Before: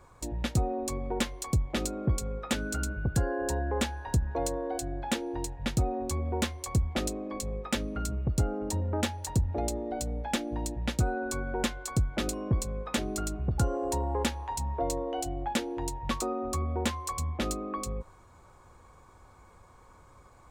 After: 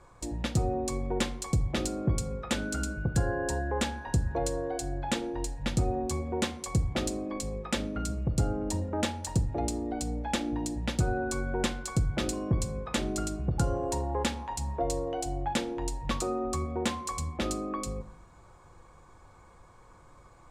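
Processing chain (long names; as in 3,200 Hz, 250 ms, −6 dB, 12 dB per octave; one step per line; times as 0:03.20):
low-pass filter 11,000 Hz 12 dB per octave
rectangular room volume 680 cubic metres, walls furnished, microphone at 0.76 metres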